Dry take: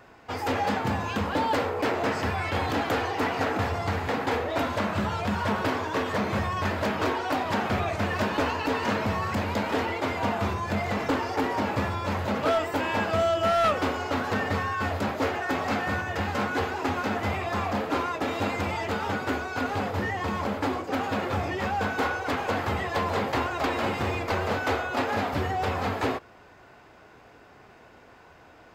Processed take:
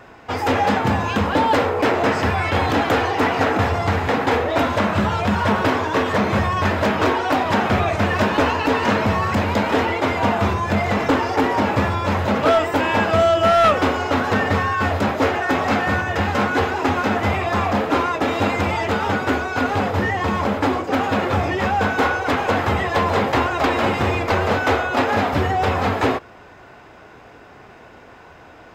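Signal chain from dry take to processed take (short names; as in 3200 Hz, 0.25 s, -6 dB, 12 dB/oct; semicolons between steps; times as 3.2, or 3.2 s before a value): high shelf 7500 Hz -5.5 dB; notch 4500 Hz, Q 20; gain +8.5 dB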